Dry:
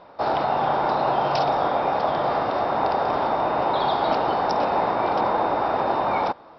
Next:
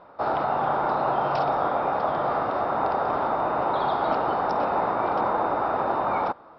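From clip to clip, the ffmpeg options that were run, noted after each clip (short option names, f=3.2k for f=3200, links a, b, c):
-af "lowpass=f=1.9k:p=1,equalizer=f=1.3k:w=3.4:g=6.5,volume=-2.5dB"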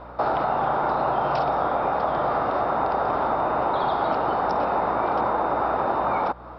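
-af "acompressor=threshold=-31dB:ratio=3,aeval=exprs='val(0)+0.002*(sin(2*PI*60*n/s)+sin(2*PI*2*60*n/s)/2+sin(2*PI*3*60*n/s)/3+sin(2*PI*4*60*n/s)/4+sin(2*PI*5*60*n/s)/5)':c=same,volume=8.5dB"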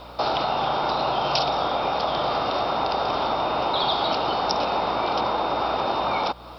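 -af "aexciter=amount=9.1:drive=4.1:freq=2.6k,volume=-1dB"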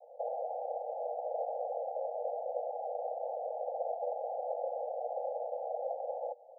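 -af "acrusher=samples=41:mix=1:aa=0.000001,asuperpass=centerf=640:order=20:qfactor=1.7,volume=-5.5dB"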